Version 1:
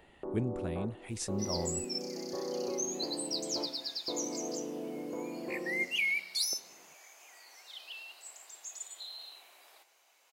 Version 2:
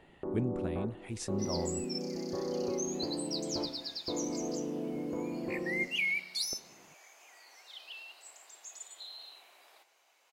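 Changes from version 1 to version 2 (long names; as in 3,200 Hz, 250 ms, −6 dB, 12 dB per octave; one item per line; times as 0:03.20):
first sound: remove resonant band-pass 740 Hz, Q 0.55
master: add high-shelf EQ 6,300 Hz −6.5 dB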